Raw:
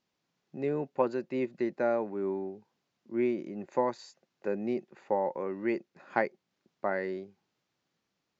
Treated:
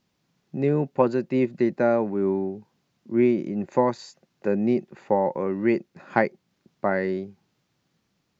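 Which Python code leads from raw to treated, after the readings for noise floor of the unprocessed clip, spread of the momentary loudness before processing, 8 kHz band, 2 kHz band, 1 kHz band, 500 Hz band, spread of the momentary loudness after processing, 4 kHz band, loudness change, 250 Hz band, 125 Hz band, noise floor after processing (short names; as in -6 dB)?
-83 dBFS, 8 LU, n/a, +6.5 dB, +6.5 dB, +7.5 dB, 9 LU, +7.0 dB, +8.5 dB, +10.0 dB, +14.0 dB, -74 dBFS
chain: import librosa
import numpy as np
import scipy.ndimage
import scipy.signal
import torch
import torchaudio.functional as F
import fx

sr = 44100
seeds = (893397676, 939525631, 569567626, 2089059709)

y = fx.bass_treble(x, sr, bass_db=9, treble_db=1)
y = y * librosa.db_to_amplitude(6.5)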